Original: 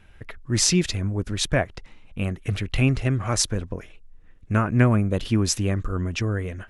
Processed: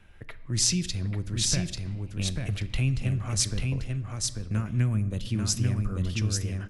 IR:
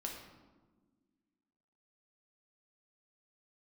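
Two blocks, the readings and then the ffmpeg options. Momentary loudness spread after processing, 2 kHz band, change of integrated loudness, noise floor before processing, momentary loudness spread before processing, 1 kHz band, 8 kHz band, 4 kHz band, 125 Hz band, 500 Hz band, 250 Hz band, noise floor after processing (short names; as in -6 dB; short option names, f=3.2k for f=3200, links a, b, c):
8 LU, -9.0 dB, -4.5 dB, -49 dBFS, 12 LU, -13.5 dB, -1.5 dB, -2.5 dB, -3.0 dB, -13.0 dB, -7.5 dB, -44 dBFS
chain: -filter_complex "[0:a]acrossover=split=180|3000[a][b][c];[b]acompressor=threshold=-37dB:ratio=5[d];[a][d][c]amix=inputs=3:normalize=0,aecho=1:1:841:0.668,asplit=2[e][f];[1:a]atrim=start_sample=2205[g];[f][g]afir=irnorm=-1:irlink=0,volume=-8dB[h];[e][h]amix=inputs=2:normalize=0,volume=-5dB"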